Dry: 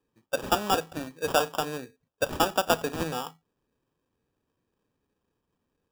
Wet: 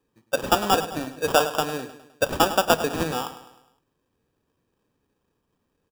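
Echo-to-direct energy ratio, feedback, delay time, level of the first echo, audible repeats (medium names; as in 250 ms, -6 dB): -12.0 dB, 49%, 103 ms, -13.0 dB, 4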